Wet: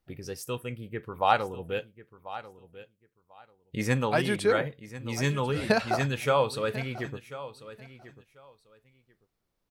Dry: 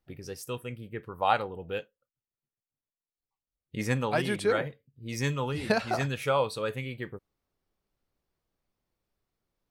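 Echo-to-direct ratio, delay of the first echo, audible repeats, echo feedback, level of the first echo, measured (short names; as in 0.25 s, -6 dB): -15.5 dB, 1.042 s, 2, 18%, -15.5 dB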